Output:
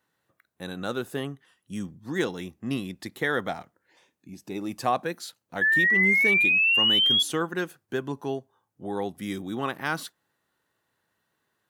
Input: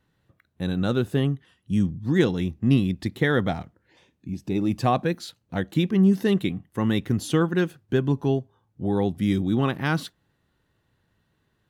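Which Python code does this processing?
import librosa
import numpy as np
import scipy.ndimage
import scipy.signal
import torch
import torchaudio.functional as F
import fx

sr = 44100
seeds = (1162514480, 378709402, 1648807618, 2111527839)

y = fx.highpass(x, sr, hz=1300.0, slope=6)
y = fx.peak_eq(y, sr, hz=3200.0, db=-8.0, octaves=1.8)
y = fx.spec_paint(y, sr, seeds[0], shape='rise', start_s=5.61, length_s=1.62, low_hz=1700.0, high_hz=3400.0, level_db=-26.0)
y = F.gain(torch.from_numpy(y), 5.0).numpy()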